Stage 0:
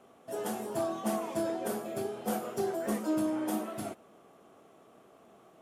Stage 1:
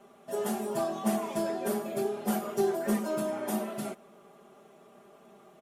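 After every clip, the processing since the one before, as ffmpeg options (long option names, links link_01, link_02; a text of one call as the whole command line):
ffmpeg -i in.wav -af "aecho=1:1:5:0.92" out.wav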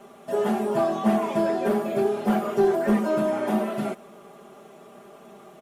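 ffmpeg -i in.wav -filter_complex "[0:a]asoftclip=type=tanh:threshold=-19dB,acrossover=split=3300[link_01][link_02];[link_02]acompressor=threshold=-58dB:ratio=4:attack=1:release=60[link_03];[link_01][link_03]amix=inputs=2:normalize=0,volume=8.5dB" out.wav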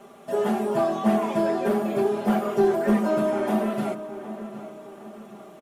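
ffmpeg -i in.wav -filter_complex "[0:a]asplit=2[link_01][link_02];[link_02]adelay=762,lowpass=frequency=2300:poles=1,volume=-12.5dB,asplit=2[link_03][link_04];[link_04]adelay=762,lowpass=frequency=2300:poles=1,volume=0.43,asplit=2[link_05][link_06];[link_06]adelay=762,lowpass=frequency=2300:poles=1,volume=0.43,asplit=2[link_07][link_08];[link_08]adelay=762,lowpass=frequency=2300:poles=1,volume=0.43[link_09];[link_01][link_03][link_05][link_07][link_09]amix=inputs=5:normalize=0" out.wav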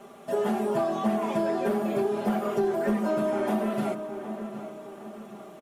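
ffmpeg -i in.wav -af "acompressor=threshold=-23dB:ratio=4" out.wav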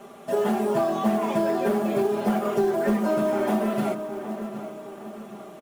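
ffmpeg -i in.wav -af "acrusher=bits=7:mode=log:mix=0:aa=0.000001,volume=3dB" out.wav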